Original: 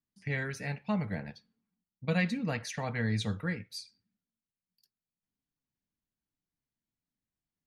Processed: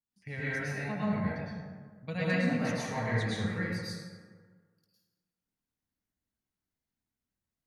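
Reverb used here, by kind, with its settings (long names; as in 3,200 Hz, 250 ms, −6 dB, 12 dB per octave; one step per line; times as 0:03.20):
dense smooth reverb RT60 1.6 s, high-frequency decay 0.45×, pre-delay 95 ms, DRR −9.5 dB
level −8 dB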